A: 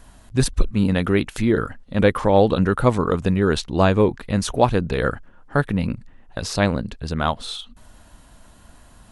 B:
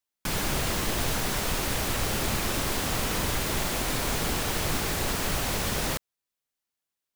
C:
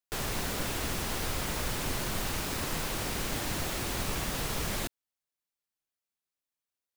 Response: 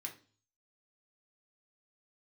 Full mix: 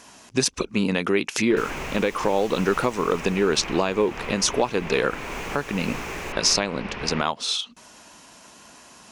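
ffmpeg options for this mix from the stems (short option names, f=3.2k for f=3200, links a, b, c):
-filter_complex "[0:a]highpass=160,volume=0.5dB[a];[1:a]lowpass=f=2.6k:w=0.5412,lowpass=f=2.6k:w=1.3066,adelay=1250,volume=-5.5dB[b];[2:a]adelay=1450,volume=-1.5dB,afade=t=out:st=3:d=0.67:silence=0.298538,afade=t=in:st=5.06:d=0.29:silence=0.281838[c];[a][b]amix=inputs=2:normalize=0,equalizer=f=5.2k:w=3.1:g=6.5,acompressor=threshold=-19dB:ratio=6,volume=0dB[d];[c][d]amix=inputs=2:normalize=0,equalizer=f=100:t=o:w=0.67:g=-6,equalizer=f=400:t=o:w=0.67:g=5,equalizer=f=1k:t=o:w=0.67:g=5,equalizer=f=2.5k:t=o:w=0.67:g=9,equalizer=f=6.3k:t=o:w=0.67:g=10,alimiter=limit=-7.5dB:level=0:latency=1:release=386"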